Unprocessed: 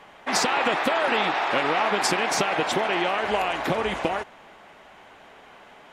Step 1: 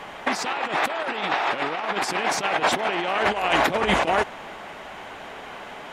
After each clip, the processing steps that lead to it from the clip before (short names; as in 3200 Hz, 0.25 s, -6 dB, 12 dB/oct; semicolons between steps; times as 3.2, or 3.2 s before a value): negative-ratio compressor -28 dBFS, ratio -0.5; gain +5.5 dB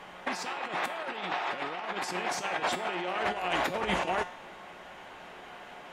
resonator 180 Hz, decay 0.54 s, harmonics all, mix 70%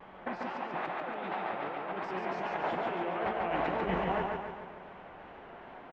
tape spacing loss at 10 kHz 43 dB; vibrato 2.5 Hz 96 cents; feedback echo 0.141 s, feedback 53%, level -3 dB